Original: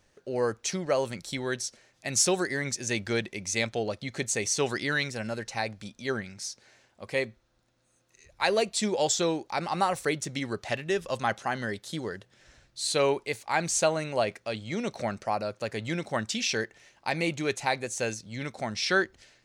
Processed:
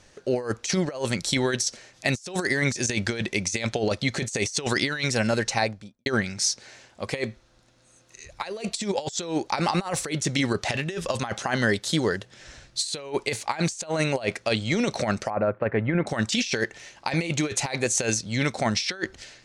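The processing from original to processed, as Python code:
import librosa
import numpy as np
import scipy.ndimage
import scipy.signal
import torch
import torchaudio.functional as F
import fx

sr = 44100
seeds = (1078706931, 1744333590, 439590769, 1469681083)

y = fx.studio_fade_out(x, sr, start_s=5.45, length_s=0.61)
y = fx.cheby2_lowpass(y, sr, hz=6200.0, order=4, stop_db=60, at=(15.3, 16.07))
y = fx.high_shelf(y, sr, hz=5400.0, db=7.0)
y = fx.over_compress(y, sr, threshold_db=-31.0, ratio=-0.5)
y = scipy.signal.sosfilt(scipy.signal.butter(2, 8000.0, 'lowpass', fs=sr, output='sos'), y)
y = F.gain(torch.from_numpy(y), 6.5).numpy()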